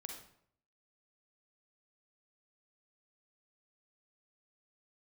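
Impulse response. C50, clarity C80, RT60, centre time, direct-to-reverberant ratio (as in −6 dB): 3.0 dB, 8.0 dB, 0.65 s, 33 ms, 2.0 dB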